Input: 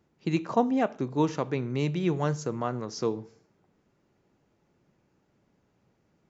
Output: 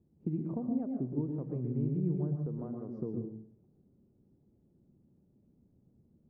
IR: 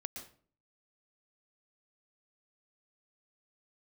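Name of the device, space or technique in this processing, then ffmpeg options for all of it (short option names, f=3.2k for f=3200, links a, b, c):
television next door: -filter_complex "[0:a]asettb=1/sr,asplit=3[a][b][c];[a]atrim=end=2.464[d];[b]atrim=start=2.46:end=2.98,asetpts=PTS-STARTPTS,afade=t=in:d=0.004:c=qsin,afade=t=out:st=0.516:d=0.004:c=qsin,highpass=f=450:p=1[e];[c]atrim=start=2.976[f];[d][e]acrossfade=d=0.004:c1=hsin:c2=qsin[g];[g][f]acrossfade=d=0.004:c1=qsin:c2=hsin,acompressor=threshold=-32dB:ratio=4,lowpass=290[h];[1:a]atrim=start_sample=2205[i];[h][i]afir=irnorm=-1:irlink=0,volume=6dB"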